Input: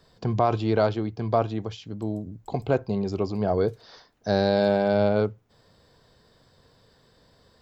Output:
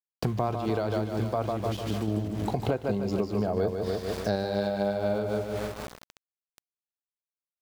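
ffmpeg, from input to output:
ffmpeg -i in.wav -filter_complex "[0:a]aecho=1:1:150|300|450|600|750|900|1050:0.531|0.276|0.144|0.0746|0.0388|0.0202|0.0105,asettb=1/sr,asplit=3[link_01][link_02][link_03];[link_01]atrim=end=2.084[link_04];[link_02]atrim=start=2.08:end=4.36,asetpts=PTS-STARTPTS,afade=type=in:duration=0.004:curve=qsin,afade=type=out:start_time=2.276:duration=0.004:curve=qsin,acontrast=20[link_05];[link_03]atrim=start=4.356[link_06];[link_04][link_05]acrossfade=duration=0.004:curve1=hsin:curve2=qsin[link_07];[link_07][link_06]acrossfade=duration=0.004:curve1=qsin:curve2=hsin,aeval=exprs='val(0)+0.00501*(sin(2*PI*60*n/s)+sin(2*PI*2*60*n/s)/2+sin(2*PI*3*60*n/s)/3+sin(2*PI*4*60*n/s)/4+sin(2*PI*5*60*n/s)/5)':channel_layout=same,aeval=exprs='val(0)*gte(abs(val(0)),0.0119)':channel_layout=same,tremolo=f=4.1:d=0.48,acompressor=threshold=-34dB:ratio=5,volume=8dB" out.wav

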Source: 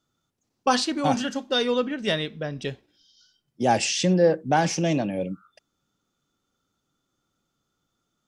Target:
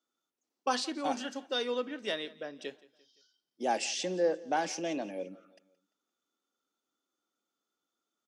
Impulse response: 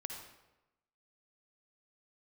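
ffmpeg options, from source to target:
-af "highpass=frequency=260:width=0.5412,highpass=frequency=260:width=1.3066,aecho=1:1:172|344|516:0.0794|0.0389|0.0191,volume=-9dB"

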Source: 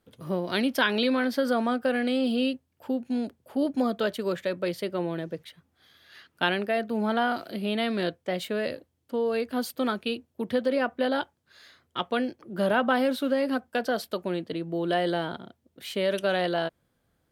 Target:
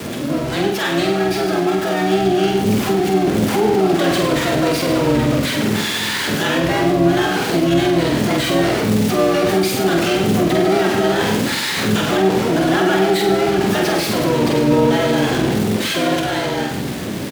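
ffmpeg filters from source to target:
ffmpeg -i in.wav -filter_complex "[0:a]aeval=exprs='val(0)+0.5*0.0668*sgn(val(0))':channel_layout=same,dynaudnorm=framelen=240:gausssize=17:maxgain=11.5dB,equalizer=frequency=740:width=0.65:gain=-14,afreqshift=130,acontrast=88,asplit=2[link_01][link_02];[link_02]aecho=0:1:100|200|300|400:0.376|0.147|0.0572|0.0223[link_03];[link_01][link_03]amix=inputs=2:normalize=0,asplit=4[link_04][link_05][link_06][link_07];[link_05]asetrate=22050,aresample=44100,atempo=2,volume=-6dB[link_08];[link_06]asetrate=35002,aresample=44100,atempo=1.25992,volume=-9dB[link_09];[link_07]asetrate=88200,aresample=44100,atempo=0.5,volume=-8dB[link_10];[link_04][link_08][link_09][link_10]amix=inputs=4:normalize=0,alimiter=limit=-6dB:level=0:latency=1:release=44,highshelf=frequency=4500:gain=-11.5,asplit=2[link_11][link_12];[link_12]adelay=47,volume=-4dB[link_13];[link_11][link_13]amix=inputs=2:normalize=0,volume=-2dB" out.wav

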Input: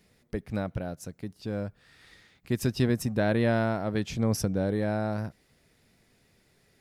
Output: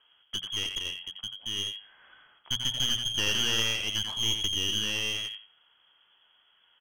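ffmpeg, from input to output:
ffmpeg -i in.wav -filter_complex "[0:a]asplit=2[link_01][link_02];[link_02]aeval=exprs='(mod(7.08*val(0)+1,2)-1)/7.08':channel_layout=same,volume=-11.5dB[link_03];[link_01][link_03]amix=inputs=2:normalize=0,aecho=1:1:88|176|264:0.447|0.0938|0.0197,lowpass=frequency=2900:width_type=q:width=0.5098,lowpass=frequency=2900:width_type=q:width=0.6013,lowpass=frequency=2900:width_type=q:width=0.9,lowpass=frequency=2900:width_type=q:width=2.563,afreqshift=-3400,aeval=exprs='clip(val(0),-1,0.0251)':channel_layout=same,bandreject=frequency=60:width_type=h:width=6,bandreject=frequency=120:width_type=h:width=6,bandreject=frequency=180:width_type=h:width=6,volume=-2dB" out.wav

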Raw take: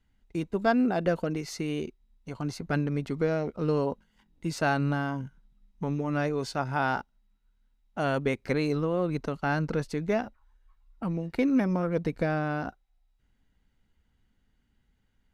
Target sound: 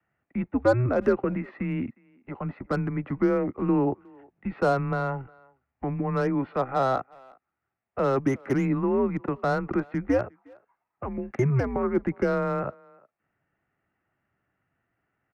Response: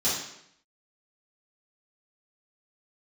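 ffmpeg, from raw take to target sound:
-filter_complex "[0:a]highpass=frequency=290:width_type=q:width=0.5412,highpass=frequency=290:width_type=q:width=1.307,lowpass=frequency=2500:width_type=q:width=0.5176,lowpass=frequency=2500:width_type=q:width=0.7071,lowpass=frequency=2500:width_type=q:width=1.932,afreqshift=-130,acrossover=split=320|390|1400[link_01][link_02][link_03][link_04];[link_04]aeval=exprs='0.0112*(abs(mod(val(0)/0.0112+3,4)-2)-1)':channel_layout=same[link_05];[link_01][link_02][link_03][link_05]amix=inputs=4:normalize=0,aemphasis=mode=reproduction:type=cd,asplit=2[link_06][link_07];[link_07]adelay=360,highpass=300,lowpass=3400,asoftclip=type=hard:threshold=-24dB,volume=-25dB[link_08];[link_06][link_08]amix=inputs=2:normalize=0,volume=5dB"

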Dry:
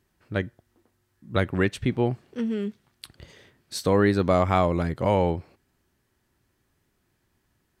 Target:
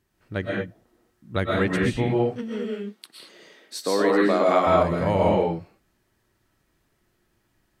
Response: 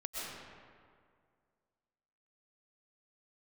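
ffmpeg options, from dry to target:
-filter_complex "[0:a]asplit=3[link_01][link_02][link_03];[link_01]afade=type=out:start_time=2.41:duration=0.02[link_04];[link_02]highpass=frequency=240:width=0.5412,highpass=frequency=240:width=1.3066,afade=type=in:start_time=2.41:duration=0.02,afade=type=out:start_time=4.66:duration=0.02[link_05];[link_03]afade=type=in:start_time=4.66:duration=0.02[link_06];[link_04][link_05][link_06]amix=inputs=3:normalize=0[link_07];[1:a]atrim=start_sample=2205,afade=type=out:start_time=0.29:duration=0.01,atrim=end_sample=13230[link_08];[link_07][link_08]afir=irnorm=-1:irlink=0,volume=2.5dB"

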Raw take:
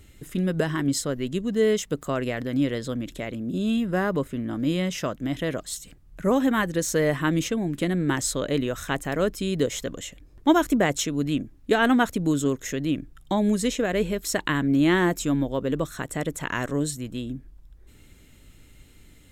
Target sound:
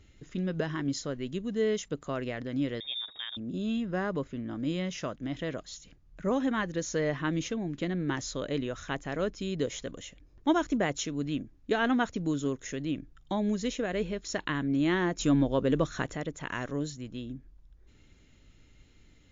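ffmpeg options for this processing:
ffmpeg -i in.wav -filter_complex "[0:a]asettb=1/sr,asplit=3[link_01][link_02][link_03];[link_01]atrim=end=2.804[link_04];[link_02]atrim=start=2.8:end=3.37,asetpts=PTS-STARTPTS,afade=type=in:duration=0.004:curve=qsin,afade=type=out:start_time=0.566:duration=0.004:curve=qsin,lowpass=frequency=3200:width_type=q:width=0.5098,lowpass=frequency=3200:width_type=q:width=0.6013,lowpass=frequency=3200:width_type=q:width=0.9,lowpass=frequency=3200:width_type=q:width=2.563,afreqshift=-3800[link_05];[link_03]atrim=start=3.366[link_06];[link_04][link_05]acrossfade=duration=0.004:curve1=hsin:curve2=qsin[link_07];[link_07][link_06]acrossfade=duration=0.004:curve1=qsin:curve2=hsin,asplit=3[link_08][link_09][link_10];[link_08]afade=type=out:start_time=15.18:duration=0.02[link_11];[link_09]acontrast=75,afade=type=in:start_time=15.18:duration=0.02,afade=type=out:start_time=16.14:duration=0.02[link_12];[link_10]afade=type=in:start_time=16.14:duration=0.02[link_13];[link_11][link_12][link_13]amix=inputs=3:normalize=0,volume=-6.5dB" -ar 16000 -c:a libmp3lame -b:a 56k out.mp3

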